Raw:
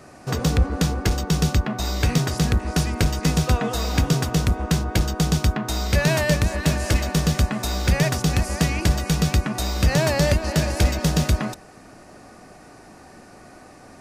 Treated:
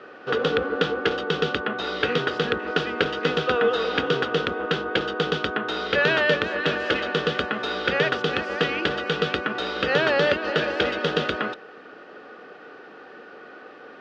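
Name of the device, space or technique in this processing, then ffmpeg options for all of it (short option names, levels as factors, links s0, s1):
phone earpiece: -af "highpass=410,equalizer=f=460:t=q:w=4:g=9,equalizer=f=670:t=q:w=4:g=-9,equalizer=f=980:t=q:w=4:g=-7,equalizer=f=1400:t=q:w=4:g=7,equalizer=f=2200:t=q:w=4:g=-6,equalizer=f=3200:t=q:w=4:g=6,lowpass=f=3300:w=0.5412,lowpass=f=3300:w=1.3066,volume=1.68"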